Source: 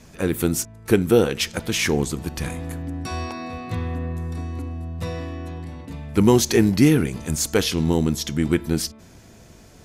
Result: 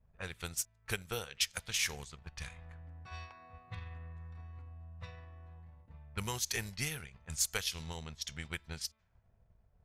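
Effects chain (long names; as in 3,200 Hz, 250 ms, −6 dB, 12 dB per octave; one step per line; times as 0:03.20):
transient designer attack +5 dB, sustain −7 dB
guitar amp tone stack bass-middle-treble 10-0-10
low-pass that shuts in the quiet parts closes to 510 Hz, open at −27 dBFS
level −8 dB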